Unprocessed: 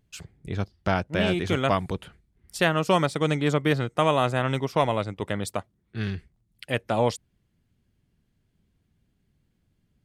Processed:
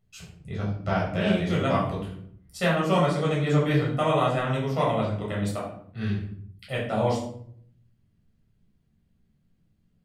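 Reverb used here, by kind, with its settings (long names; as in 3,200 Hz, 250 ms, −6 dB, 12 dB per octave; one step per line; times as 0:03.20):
rectangular room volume 940 cubic metres, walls furnished, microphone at 6.6 metres
level −10 dB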